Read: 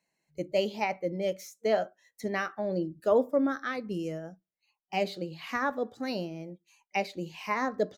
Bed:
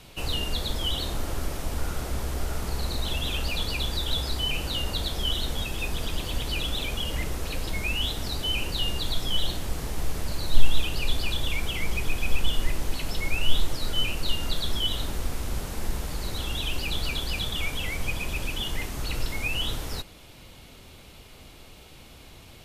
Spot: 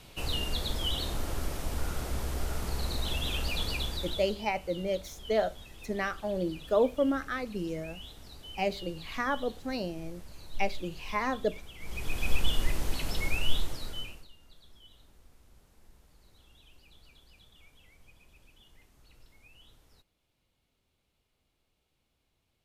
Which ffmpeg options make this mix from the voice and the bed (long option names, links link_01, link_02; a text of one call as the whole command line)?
ffmpeg -i stem1.wav -i stem2.wav -filter_complex "[0:a]adelay=3650,volume=-1dB[link_01];[1:a]volume=12.5dB,afade=type=out:start_time=3.71:duration=0.68:silence=0.177828,afade=type=in:start_time=11.78:duration=0.52:silence=0.158489,afade=type=out:start_time=13.25:duration=1.03:silence=0.0446684[link_02];[link_01][link_02]amix=inputs=2:normalize=0" out.wav